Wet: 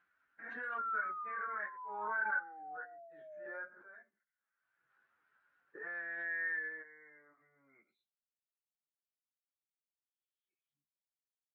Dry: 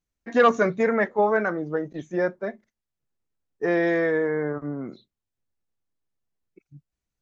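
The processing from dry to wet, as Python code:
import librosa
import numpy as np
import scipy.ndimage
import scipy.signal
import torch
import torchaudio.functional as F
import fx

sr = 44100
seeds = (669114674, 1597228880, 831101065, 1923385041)

y = scipy.signal.sosfilt(scipy.signal.butter(2, 42.0, 'highpass', fs=sr, output='sos'), x)
y = fx.level_steps(y, sr, step_db=12)
y = fx.spec_paint(y, sr, seeds[0], shape='fall', start_s=0.49, length_s=1.81, low_hz=550.0, high_hz=1400.0, level_db=-30.0)
y = fx.filter_sweep_bandpass(y, sr, from_hz=1500.0, to_hz=3300.0, start_s=3.6, end_s=5.94, q=7.7)
y = fx.stretch_vocoder_free(y, sr, factor=1.6)
y = fx.air_absorb(y, sr, metres=250.0)
y = fx.pre_swell(y, sr, db_per_s=33.0)
y = F.gain(torch.from_numpy(y), 1.0).numpy()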